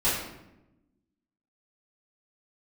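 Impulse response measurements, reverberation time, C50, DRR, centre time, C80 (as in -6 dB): 0.90 s, 2.0 dB, -13.0 dB, 58 ms, 5.0 dB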